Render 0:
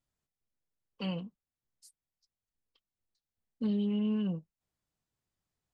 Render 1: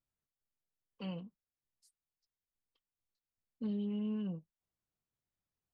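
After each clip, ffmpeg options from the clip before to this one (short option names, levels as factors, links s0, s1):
-af "highshelf=f=3300:g=-7,volume=0.501"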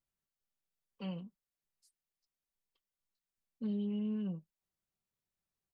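-af "aecho=1:1:5.2:0.33,volume=0.841"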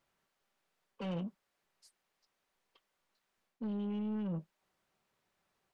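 -filter_complex "[0:a]areverse,acompressor=threshold=0.00708:ratio=12,areverse,asplit=2[s0][s1];[s1]highpass=f=720:p=1,volume=8.91,asoftclip=type=tanh:threshold=0.0106[s2];[s0][s2]amix=inputs=2:normalize=0,lowpass=f=1100:p=1,volume=0.501,volume=2.82"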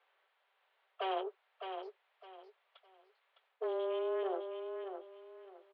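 -af "aecho=1:1:609|1218|1827:0.447|0.116|0.0302,highpass=f=250:t=q:w=0.5412,highpass=f=250:t=q:w=1.307,lowpass=f=3500:t=q:w=0.5176,lowpass=f=3500:t=q:w=0.7071,lowpass=f=3500:t=q:w=1.932,afreqshift=190,volume=2.24"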